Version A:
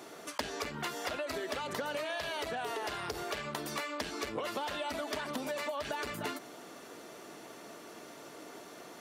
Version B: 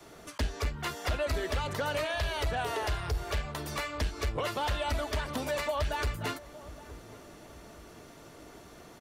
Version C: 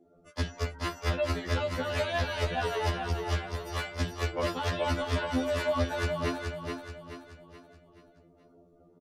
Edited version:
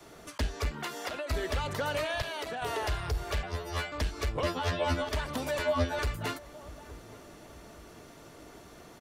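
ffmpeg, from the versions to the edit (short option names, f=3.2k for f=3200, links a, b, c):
-filter_complex "[0:a]asplit=2[a][b];[2:a]asplit=3[c][d][e];[1:a]asplit=6[f][g][h][i][j][k];[f]atrim=end=0.712[l];[a]atrim=start=0.708:end=1.302[m];[g]atrim=start=1.298:end=2.222[n];[b]atrim=start=2.218:end=2.622[o];[h]atrim=start=2.618:end=3.432[p];[c]atrim=start=3.428:end=3.922[q];[i]atrim=start=3.918:end=4.432[r];[d]atrim=start=4.428:end=5.092[s];[j]atrim=start=5.088:end=5.592[t];[e]atrim=start=5.588:end=5.992[u];[k]atrim=start=5.988[v];[l][m]acrossfade=d=0.004:c1=hsin:c2=hsin[w];[w][n]acrossfade=d=0.004:c1=hsin:c2=hsin[x];[x][o]acrossfade=d=0.004:c1=hsin:c2=hsin[y];[y][p]acrossfade=d=0.004:c1=hsin:c2=hsin[z];[z][q]acrossfade=d=0.004:c1=hsin:c2=hsin[aa];[aa][r]acrossfade=d=0.004:c1=hsin:c2=hsin[ab];[ab][s]acrossfade=d=0.004:c1=hsin:c2=hsin[ac];[ac][t]acrossfade=d=0.004:c1=hsin:c2=hsin[ad];[ad][u]acrossfade=d=0.004:c1=hsin:c2=hsin[ae];[ae][v]acrossfade=d=0.004:c1=hsin:c2=hsin"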